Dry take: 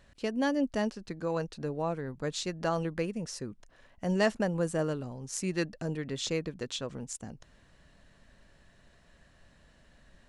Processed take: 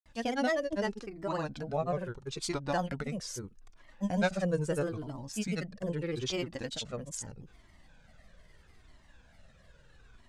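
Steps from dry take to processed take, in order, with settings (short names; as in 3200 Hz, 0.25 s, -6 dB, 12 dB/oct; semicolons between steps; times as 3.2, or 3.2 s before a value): grains 0.1 s, grains 20/s, pitch spread up and down by 3 st; cascading flanger falling 0.78 Hz; gain +5.5 dB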